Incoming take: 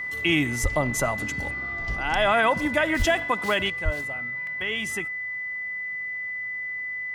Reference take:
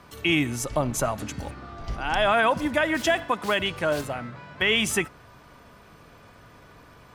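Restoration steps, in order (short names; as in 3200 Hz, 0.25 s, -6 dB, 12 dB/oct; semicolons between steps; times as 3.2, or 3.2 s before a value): notch 2000 Hz, Q 30; 0.62–0.74 HPF 140 Hz 24 dB/oct; 2.98–3.1 HPF 140 Hz 24 dB/oct; 3.84–3.96 HPF 140 Hz 24 dB/oct; interpolate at 4.47, 1.7 ms; gain 0 dB, from 3.7 s +8.5 dB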